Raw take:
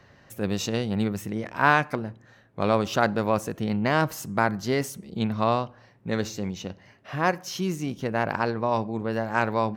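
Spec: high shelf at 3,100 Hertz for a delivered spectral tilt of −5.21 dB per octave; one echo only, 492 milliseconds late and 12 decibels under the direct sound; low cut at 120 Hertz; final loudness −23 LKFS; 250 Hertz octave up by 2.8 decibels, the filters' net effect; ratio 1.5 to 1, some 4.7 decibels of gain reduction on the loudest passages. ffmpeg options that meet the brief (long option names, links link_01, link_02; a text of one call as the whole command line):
ffmpeg -i in.wav -af "highpass=120,equalizer=frequency=250:width_type=o:gain=4,highshelf=frequency=3100:gain=-4,acompressor=threshold=-28dB:ratio=1.5,aecho=1:1:492:0.251,volume=6.5dB" out.wav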